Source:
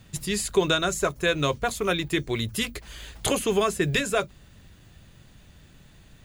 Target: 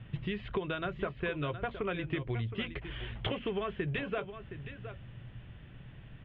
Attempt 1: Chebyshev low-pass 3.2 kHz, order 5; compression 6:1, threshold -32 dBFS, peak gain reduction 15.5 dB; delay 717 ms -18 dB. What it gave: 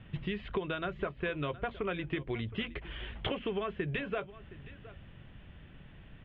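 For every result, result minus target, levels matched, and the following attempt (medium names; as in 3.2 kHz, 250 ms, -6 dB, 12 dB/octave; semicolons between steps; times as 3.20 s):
echo-to-direct -6.5 dB; 125 Hz band -3.0 dB
Chebyshev low-pass 3.2 kHz, order 5; compression 6:1, threshold -32 dBFS, peak gain reduction 15.5 dB; delay 717 ms -11.5 dB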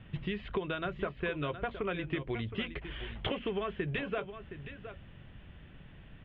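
125 Hz band -2.5 dB
Chebyshev low-pass 3.2 kHz, order 5; peaking EQ 120 Hz +13 dB 0.21 oct; compression 6:1, threshold -32 dBFS, peak gain reduction 15.5 dB; delay 717 ms -11.5 dB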